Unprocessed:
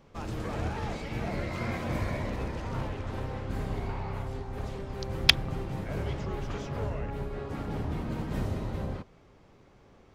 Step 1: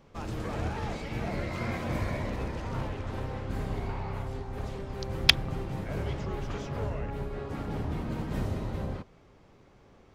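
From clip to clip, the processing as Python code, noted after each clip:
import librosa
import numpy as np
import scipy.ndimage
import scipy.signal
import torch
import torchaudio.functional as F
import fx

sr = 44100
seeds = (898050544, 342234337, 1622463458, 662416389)

y = x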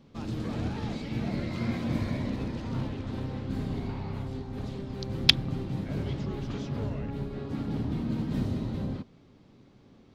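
y = fx.graphic_eq(x, sr, hz=(125, 250, 4000), db=(7, 12, 9))
y = y * librosa.db_to_amplitude(-6.0)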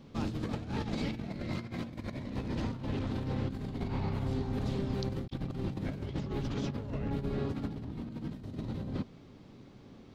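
y = fx.over_compress(x, sr, threshold_db=-35.0, ratio=-0.5)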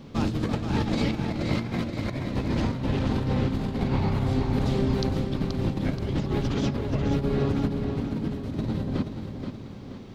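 y = fx.echo_feedback(x, sr, ms=478, feedback_pct=44, wet_db=-7.0)
y = y * librosa.db_to_amplitude(8.5)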